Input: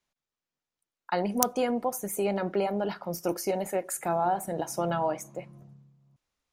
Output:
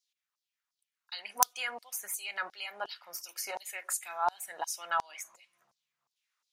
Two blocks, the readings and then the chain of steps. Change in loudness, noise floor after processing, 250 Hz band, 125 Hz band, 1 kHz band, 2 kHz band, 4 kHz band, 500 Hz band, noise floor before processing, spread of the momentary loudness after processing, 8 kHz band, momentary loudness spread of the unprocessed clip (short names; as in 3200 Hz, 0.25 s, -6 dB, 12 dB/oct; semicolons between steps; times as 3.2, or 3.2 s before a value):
-5.5 dB, under -85 dBFS, -30.5 dB, under -30 dB, -4.5 dB, +3.0 dB, +2.5 dB, -17.0 dB, under -85 dBFS, 13 LU, +0.5 dB, 6 LU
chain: LFO high-pass saw down 2.8 Hz 970–5300 Hz; gain -1 dB